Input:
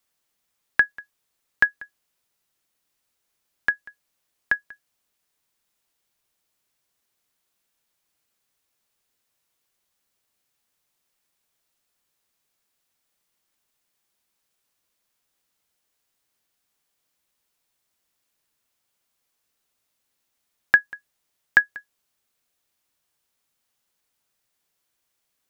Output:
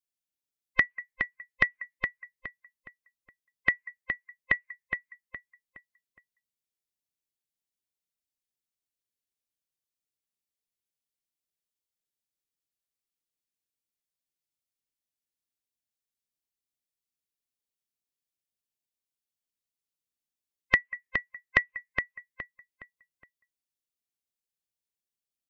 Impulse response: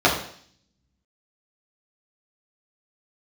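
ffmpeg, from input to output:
-filter_complex "[0:a]afftfilt=real='real(if(between(b,1,1008),(2*floor((b-1)/24)+1)*24-b,b),0)':imag='imag(if(between(b,1,1008),(2*floor((b-1)/24)+1)*24-b,b),0)*if(between(b,1,1008),-1,1)':win_size=2048:overlap=0.75,afftdn=noise_reduction=24:noise_floor=-47,equalizer=frequency=1100:width_type=o:width=1.5:gain=-13.5,acompressor=threshold=-28dB:ratio=4,asplit=2[link_01][link_02];[link_02]adelay=416,lowpass=frequency=3000:poles=1,volume=-5.5dB,asplit=2[link_03][link_04];[link_04]adelay=416,lowpass=frequency=3000:poles=1,volume=0.36,asplit=2[link_05][link_06];[link_06]adelay=416,lowpass=frequency=3000:poles=1,volume=0.36,asplit=2[link_07][link_08];[link_08]adelay=416,lowpass=frequency=3000:poles=1,volume=0.36[link_09];[link_03][link_05][link_07][link_09]amix=inputs=4:normalize=0[link_10];[link_01][link_10]amix=inputs=2:normalize=0,volume=8dB"

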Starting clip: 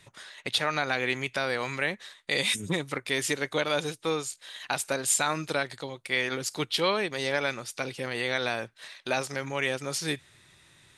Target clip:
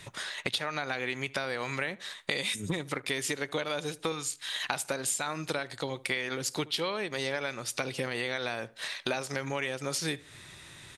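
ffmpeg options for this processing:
ffmpeg -i in.wav -filter_complex "[0:a]asettb=1/sr,asplit=3[link_01][link_02][link_03];[link_01]atrim=end=4.124[link_04];[link_02]atrim=start=4.12:end=4.52,asetpts=PTS-STARTPTS,afade=type=in:duration=0.004:curve=qsin,afade=type=out:start_time=0.396:duration=0.004:curve=qsin,equalizer=frequency=520:width_type=o:width=0.85:gain=-14.5[link_05];[link_03]atrim=start=4.516[link_06];[link_04][link_05]acrossfade=duration=0.004:curve1=hsin:curve2=qsin[link_07];[link_07][link_06]acrossfade=duration=0.004:curve1=qsin:curve2=hsin,acompressor=threshold=-37dB:ratio=10,asplit=2[link_08][link_09];[link_09]adelay=75,lowpass=frequency=1800:poles=1,volume=-20dB,asplit=2[link_10][link_11];[link_11]adelay=75,lowpass=frequency=1800:poles=1,volume=0.36,asplit=2[link_12][link_13];[link_13]adelay=75,lowpass=frequency=1800:poles=1,volume=0.36[link_14];[link_10][link_12][link_14]amix=inputs=3:normalize=0[link_15];[link_08][link_15]amix=inputs=2:normalize=0,volume=8.5dB" out.wav

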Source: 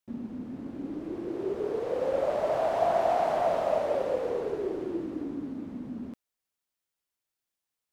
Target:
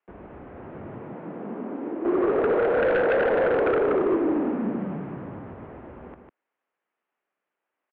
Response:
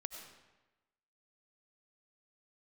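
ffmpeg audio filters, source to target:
-filter_complex "[0:a]asplit=2[link_01][link_02];[link_02]acompressor=threshold=-35dB:ratio=6,volume=-1.5dB[link_03];[link_01][link_03]amix=inputs=2:normalize=0,highpass=frequency=240:width_type=q:width=0.5412,highpass=frequency=240:width_type=q:width=1.307,lowpass=frequency=3200:width_type=q:width=0.5176,lowpass=frequency=3200:width_type=q:width=0.7071,lowpass=frequency=3200:width_type=q:width=1.932,afreqshift=-180,asettb=1/sr,asplit=3[link_04][link_05][link_06];[link_04]atrim=end=0.984[link_07];[link_05]atrim=start=0.98:end=2.05,asetpts=PTS-STARTPTS,afade=type=in:duration=0.004:curve=qsin,afade=type=out:start_time=1.066:duration=0.004:curve=qsin,acrossover=split=99|340|1000[link_08][link_09][link_10][link_11];[link_08]acompressor=threshold=-56dB:ratio=4[link_12];[link_09]acompressor=threshold=-41dB:ratio=4[link_13];[link_10]acompressor=threshold=-40dB:ratio=4[link_14];[link_11]acompressor=threshold=-58dB:ratio=4[link_15];[link_12][link_13][link_14][link_15]amix=inputs=4:normalize=0[link_16];[link_06]atrim=start=2.046[link_17];[link_07][link_16]acrossfade=duration=0.004:curve1=hsin:curve2=qsin[link_18];[link_18][link_17]acrossfade=duration=0.004:curve1=qsin:curve2=hsin,acrossover=split=240 2200:gain=0.0631 1 0.126[link_19][link_20][link_21];[link_19][link_20][link_21]amix=inputs=3:normalize=0,asplit=2[link_22][link_23];[link_23]aecho=0:1:150:0.501[link_24];[link_22][link_24]amix=inputs=2:normalize=0,aeval=exprs='0.266*sin(PI/2*3.16*val(0)/0.266)':channel_layout=same,volume=-6.5dB"

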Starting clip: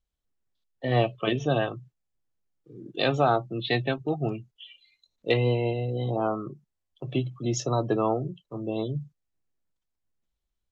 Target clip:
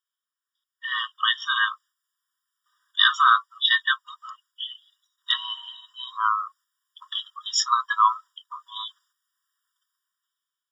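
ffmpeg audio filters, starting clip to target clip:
ffmpeg -i in.wav -filter_complex "[0:a]acrossover=split=160[link_01][link_02];[link_02]dynaudnorm=framelen=300:gausssize=7:maxgain=14dB[link_03];[link_01][link_03]amix=inputs=2:normalize=0,afftfilt=real='re*eq(mod(floor(b*sr/1024/960),2),1)':imag='im*eq(mod(floor(b*sr/1024/960),2),1)':win_size=1024:overlap=0.75,volume=5dB" out.wav

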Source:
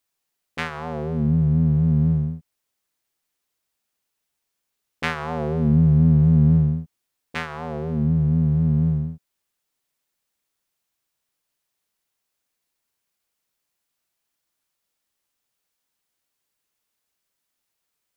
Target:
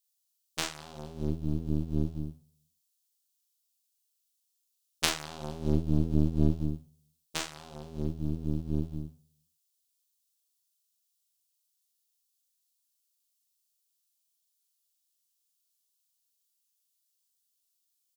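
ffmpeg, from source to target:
ffmpeg -i in.wav -filter_complex "[0:a]asplit=2[link_01][link_02];[link_02]adelay=40,volume=-3.5dB[link_03];[link_01][link_03]amix=inputs=2:normalize=0,asplit=2[link_04][link_05];[link_05]adelay=184,lowpass=frequency=2000:poles=1,volume=-23dB,asplit=2[link_06][link_07];[link_07]adelay=184,lowpass=frequency=2000:poles=1,volume=0.32[link_08];[link_06][link_08]amix=inputs=2:normalize=0[link_09];[link_04][link_09]amix=inputs=2:normalize=0,aexciter=amount=7.9:drive=6.1:freq=2900,aeval=exprs='1.33*(cos(1*acos(clip(val(0)/1.33,-1,1)))-cos(1*PI/2))+0.376*(cos(3*acos(clip(val(0)/1.33,-1,1)))-cos(3*PI/2))+0.106*(cos(6*acos(clip(val(0)/1.33,-1,1)))-cos(6*PI/2))':channel_layout=same,volume=-5.5dB" out.wav

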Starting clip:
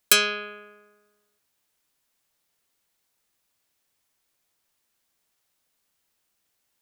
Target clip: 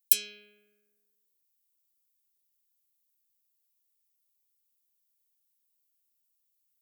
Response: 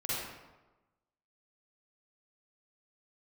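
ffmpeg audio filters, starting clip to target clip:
-af "asuperstop=centerf=1000:order=4:qfactor=0.53,aemphasis=mode=production:type=50fm,volume=-17.5dB"

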